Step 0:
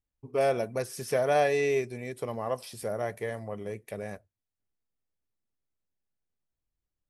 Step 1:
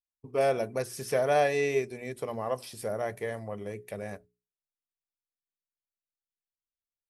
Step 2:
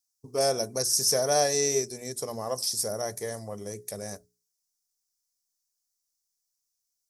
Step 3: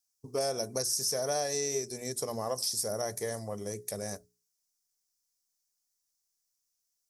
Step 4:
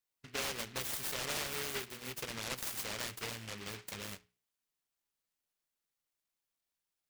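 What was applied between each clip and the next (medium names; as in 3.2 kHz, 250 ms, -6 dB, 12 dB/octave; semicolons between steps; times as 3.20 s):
gate with hold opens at -39 dBFS; hum notches 60/120/180/240/300/360/420 Hz
resonant high shelf 3.9 kHz +13.5 dB, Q 3
compression 6:1, threshold -28 dBFS, peak gain reduction 9 dB
delay time shaken by noise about 2.1 kHz, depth 0.42 ms; trim -7 dB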